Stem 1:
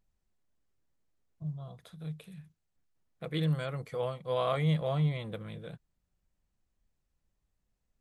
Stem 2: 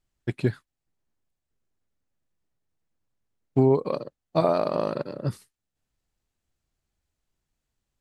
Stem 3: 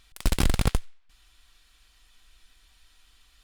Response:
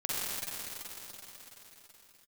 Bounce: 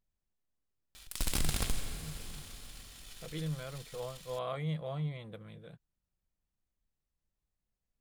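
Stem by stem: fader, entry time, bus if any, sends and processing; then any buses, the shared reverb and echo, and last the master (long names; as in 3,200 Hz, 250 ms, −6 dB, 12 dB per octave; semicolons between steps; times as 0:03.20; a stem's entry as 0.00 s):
−7.5 dB, 0.00 s, no bus, no send, no processing
muted
−1.0 dB, 0.95 s, bus A, send −14 dB, brickwall limiter −21.5 dBFS, peak gain reduction 10 dB; high-shelf EQ 3,300 Hz +10.5 dB
bus A: 0.0 dB, leveller curve on the samples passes 2; brickwall limiter −25 dBFS, peak gain reduction 9.5 dB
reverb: on, pre-delay 42 ms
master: no processing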